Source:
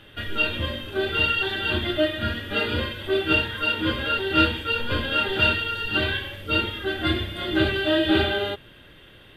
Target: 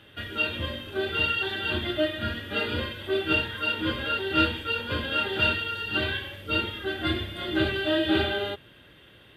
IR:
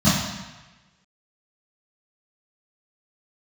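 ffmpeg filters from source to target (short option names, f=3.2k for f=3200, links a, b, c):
-af "highpass=59,volume=-3.5dB"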